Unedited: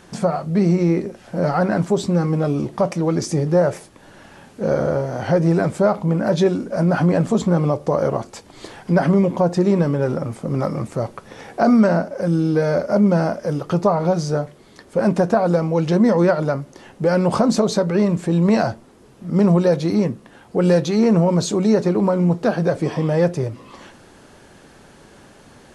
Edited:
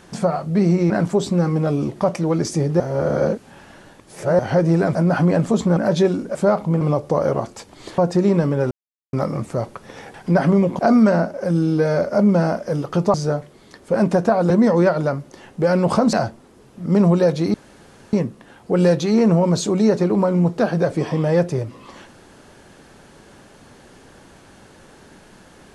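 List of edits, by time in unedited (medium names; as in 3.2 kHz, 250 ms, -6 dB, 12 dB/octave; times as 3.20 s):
0.90–1.67 s: delete
3.57–5.16 s: reverse
5.72–6.18 s: swap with 6.76–7.58 s
8.75–9.40 s: move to 11.56 s
10.13–10.55 s: mute
13.91–14.19 s: delete
15.55–15.92 s: delete
17.55–18.57 s: delete
19.98 s: insert room tone 0.59 s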